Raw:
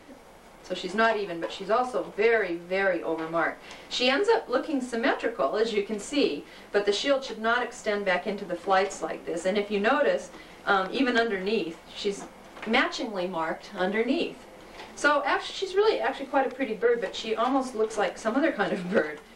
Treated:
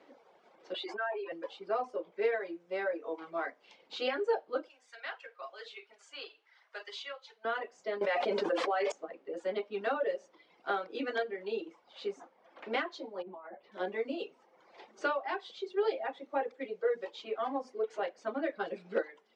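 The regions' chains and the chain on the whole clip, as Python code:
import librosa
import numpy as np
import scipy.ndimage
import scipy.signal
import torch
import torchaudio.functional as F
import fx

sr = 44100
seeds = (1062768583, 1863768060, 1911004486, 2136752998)

y = fx.chain(x, sr, fx.spec_expand(power=1.6),
    fx.highpass(hz=930.0, slope=12),
    fx.env_flatten(amount_pct=70), at=(0.74, 1.32))
y = fx.chain(y, sr, fx.highpass(hz=1300.0, slope=12),
    fx.doubler(ms=50.0, db=-11), at=(4.68, 7.45))
y = fx.chain(y, sr, fx.low_shelf(hz=280.0, db=-9.0),
    fx.env_flatten(amount_pct=100), at=(8.01, 8.92))
y = fx.chain(y, sr, fx.over_compress(threshold_db=-33.0, ratio=-1.0),
    fx.spacing_loss(db_at_10k=37),
    fx.doubler(ms=14.0, db=-11), at=(13.22, 13.72))
y = fx.dereverb_blind(y, sr, rt60_s=1.2)
y = scipy.signal.sosfilt(scipy.signal.cheby1(2, 1.0, [420.0, 4800.0], 'bandpass', fs=sr, output='sos'), y)
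y = fx.tilt_eq(y, sr, slope=-2.0)
y = y * 10.0 ** (-8.5 / 20.0)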